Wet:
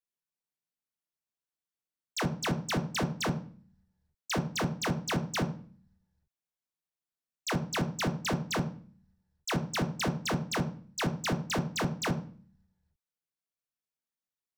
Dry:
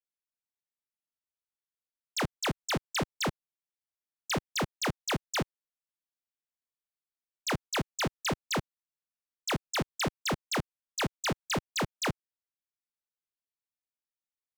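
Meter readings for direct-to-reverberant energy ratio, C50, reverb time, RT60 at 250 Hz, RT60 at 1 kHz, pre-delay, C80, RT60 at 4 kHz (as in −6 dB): 6.0 dB, 12.5 dB, 0.45 s, 0.80 s, 0.40 s, 3 ms, 16.5 dB, 0.40 s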